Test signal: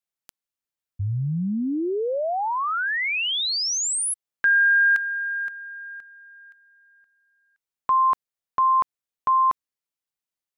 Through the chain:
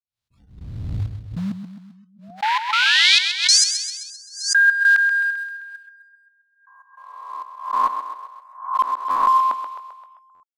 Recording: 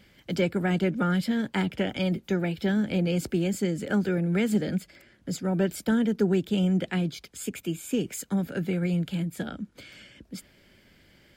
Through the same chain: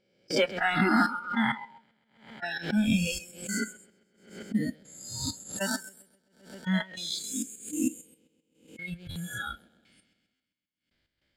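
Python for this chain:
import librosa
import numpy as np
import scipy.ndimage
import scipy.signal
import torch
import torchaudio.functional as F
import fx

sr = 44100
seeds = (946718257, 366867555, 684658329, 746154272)

p1 = fx.spec_swells(x, sr, rise_s=1.88)
p2 = fx.step_gate(p1, sr, bpm=99, pattern='..x.xxx..x....', floor_db=-60.0, edge_ms=4.5)
p3 = fx.echo_feedback(p2, sr, ms=131, feedback_pct=56, wet_db=-8.5)
p4 = fx.quant_float(p3, sr, bits=2)
p5 = p3 + F.gain(torch.from_numpy(p4), -5.5).numpy()
p6 = fx.high_shelf(p5, sr, hz=9600.0, db=-11.5)
p7 = fx.noise_reduce_blind(p6, sr, reduce_db=24)
p8 = fx.graphic_eq_15(p7, sr, hz=(160, 400, 4000), db=(-5, -4, 6))
p9 = fx.buffer_glitch(p8, sr, at_s=(9.1, 10.34), block=512, repeats=4)
y = fx.pre_swell(p9, sr, db_per_s=110.0)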